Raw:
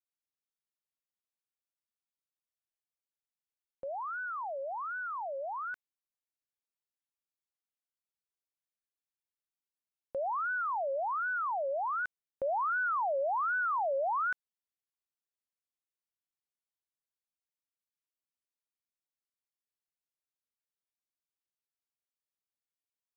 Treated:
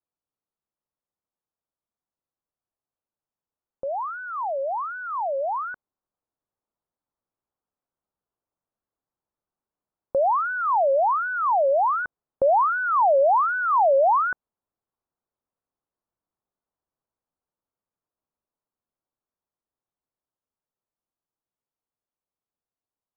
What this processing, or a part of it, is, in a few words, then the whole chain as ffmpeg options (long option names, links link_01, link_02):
action camera in a waterproof case: -af "lowpass=frequency=1200:width=0.5412,lowpass=frequency=1200:width=1.3066,dynaudnorm=framelen=750:gausssize=13:maxgain=5dB,volume=8.5dB" -ar 44100 -c:a aac -b:a 128k